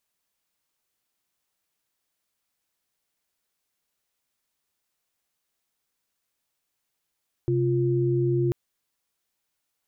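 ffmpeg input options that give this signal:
-f lavfi -i "aevalsrc='0.0708*(sin(2*PI*130.81*t)+sin(2*PI*349.23*t))':d=1.04:s=44100"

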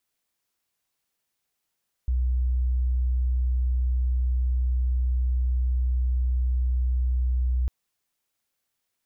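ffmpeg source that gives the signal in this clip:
-f lavfi -i "aevalsrc='0.0944*sin(2*PI*62.4*t)':d=5.6:s=44100"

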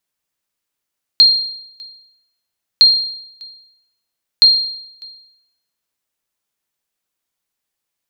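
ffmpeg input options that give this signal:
-f lavfi -i "aevalsrc='0.794*(sin(2*PI*4210*mod(t,1.61))*exp(-6.91*mod(t,1.61)/0.78)+0.0422*sin(2*PI*4210*max(mod(t,1.61)-0.6,0))*exp(-6.91*max(mod(t,1.61)-0.6,0)/0.78))':d=4.83:s=44100"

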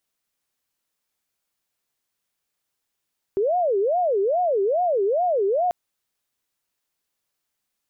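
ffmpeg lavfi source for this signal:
-f lavfi -i "aevalsrc='0.126*sin(2*PI*(557*t-170/(2*PI*2.4)*sin(2*PI*2.4*t)))':d=2.34:s=44100"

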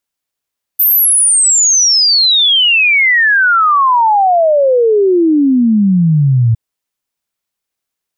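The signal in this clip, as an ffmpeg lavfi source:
-f lavfi -i "aevalsrc='0.473*clip(min(t,5.76-t)/0.01,0,1)*sin(2*PI*14000*5.76/log(110/14000)*(exp(log(110/14000)*t/5.76)-1))':d=5.76:s=44100"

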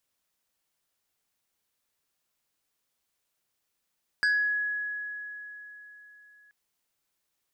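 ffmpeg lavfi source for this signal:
-f lavfi -i "aevalsrc='0.0944*pow(10,-3*t/3.84)*sin(2*PI*1680*t+0.75*pow(10,-3*t/0.46)*sin(2*PI*1.9*1680*t))':d=2.28:s=44100"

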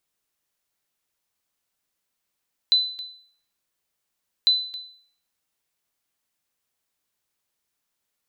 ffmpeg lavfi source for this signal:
-f lavfi -i "aevalsrc='0.266*(sin(2*PI*4010*mod(t,1.75))*exp(-6.91*mod(t,1.75)/0.55)+0.15*sin(2*PI*4010*max(mod(t,1.75)-0.27,0))*exp(-6.91*max(mod(t,1.75)-0.27,0)/0.55))':d=3.5:s=44100"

